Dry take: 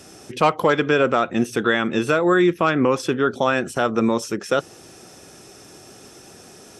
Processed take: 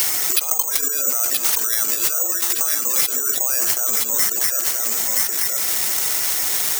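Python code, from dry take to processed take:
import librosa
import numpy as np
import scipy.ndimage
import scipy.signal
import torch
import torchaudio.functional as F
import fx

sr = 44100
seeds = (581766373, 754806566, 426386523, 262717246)

p1 = fx.block_float(x, sr, bits=3)
p2 = fx.high_shelf(p1, sr, hz=8400.0, db=6.5)
p3 = fx.over_compress(p2, sr, threshold_db=-27.0, ratio=-1.0)
p4 = scipy.signal.sosfilt(scipy.signal.butter(2, 540.0, 'highpass', fs=sr, output='sos'), p3)
p5 = p4 + fx.echo_single(p4, sr, ms=974, db=-6.0, dry=0)
p6 = fx.rev_spring(p5, sr, rt60_s=1.8, pass_ms=(40,), chirp_ms=45, drr_db=12.5)
p7 = fx.spec_gate(p6, sr, threshold_db=-15, keep='strong')
p8 = 10.0 ** (-19.5 / 20.0) * np.tanh(p7 / 10.0 ** (-19.5 / 20.0))
p9 = (np.kron(p8[::6], np.eye(6)[0]) * 6)[:len(p8)]
p10 = fx.high_shelf(p9, sr, hz=2200.0, db=9.0)
p11 = fx.band_squash(p10, sr, depth_pct=100)
y = p11 * 10.0 ** (-4.5 / 20.0)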